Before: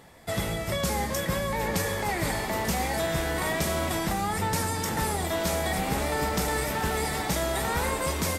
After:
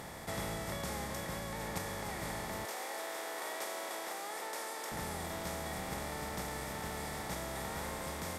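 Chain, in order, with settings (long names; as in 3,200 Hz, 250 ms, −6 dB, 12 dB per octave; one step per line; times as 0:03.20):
compressor on every frequency bin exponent 0.4
noise gate −16 dBFS, range −31 dB
0:02.65–0:04.92: high-pass filter 360 Hz 24 dB per octave
speech leveller 2 s
level +13 dB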